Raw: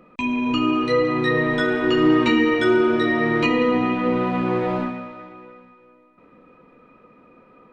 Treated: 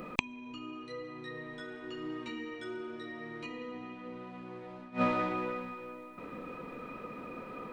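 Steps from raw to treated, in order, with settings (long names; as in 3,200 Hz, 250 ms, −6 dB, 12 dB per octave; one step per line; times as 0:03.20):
gate with flip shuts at −17 dBFS, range −31 dB
high-shelf EQ 5,100 Hz +11 dB
level +7 dB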